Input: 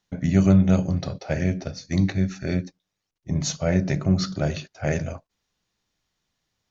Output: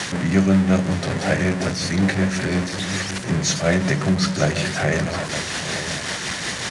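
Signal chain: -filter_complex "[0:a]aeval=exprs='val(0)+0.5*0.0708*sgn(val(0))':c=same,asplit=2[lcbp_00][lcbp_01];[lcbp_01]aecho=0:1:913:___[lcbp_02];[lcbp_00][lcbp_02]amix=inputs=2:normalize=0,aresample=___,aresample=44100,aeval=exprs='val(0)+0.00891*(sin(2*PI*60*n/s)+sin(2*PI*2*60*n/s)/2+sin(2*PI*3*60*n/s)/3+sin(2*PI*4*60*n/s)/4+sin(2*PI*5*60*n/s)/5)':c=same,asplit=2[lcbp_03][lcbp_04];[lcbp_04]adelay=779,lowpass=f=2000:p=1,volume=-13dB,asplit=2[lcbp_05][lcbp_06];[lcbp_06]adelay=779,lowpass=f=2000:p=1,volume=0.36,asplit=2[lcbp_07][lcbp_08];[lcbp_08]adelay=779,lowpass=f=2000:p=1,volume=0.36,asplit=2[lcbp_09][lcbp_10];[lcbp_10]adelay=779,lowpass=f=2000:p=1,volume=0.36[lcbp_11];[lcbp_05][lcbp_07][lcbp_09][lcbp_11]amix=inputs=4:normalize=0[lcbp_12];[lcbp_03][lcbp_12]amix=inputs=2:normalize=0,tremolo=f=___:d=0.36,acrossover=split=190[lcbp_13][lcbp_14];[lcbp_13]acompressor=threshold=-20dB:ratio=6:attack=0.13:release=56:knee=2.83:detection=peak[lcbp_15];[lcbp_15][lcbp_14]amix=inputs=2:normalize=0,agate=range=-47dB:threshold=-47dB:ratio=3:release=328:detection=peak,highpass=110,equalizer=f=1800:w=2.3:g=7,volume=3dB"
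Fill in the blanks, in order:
0.282, 22050, 5.4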